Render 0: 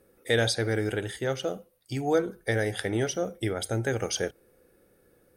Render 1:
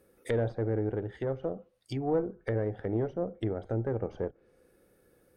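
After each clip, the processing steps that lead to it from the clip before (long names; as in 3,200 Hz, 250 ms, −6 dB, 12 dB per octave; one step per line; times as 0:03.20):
tube saturation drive 19 dB, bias 0.5
treble cut that deepens with the level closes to 730 Hz, closed at −29 dBFS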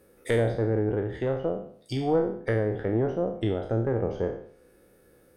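peak hold with a decay on every bin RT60 0.57 s
level +4 dB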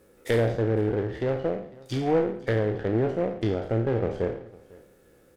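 single-tap delay 502 ms −22.5 dB
short delay modulated by noise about 1,200 Hz, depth 0.03 ms
level +1 dB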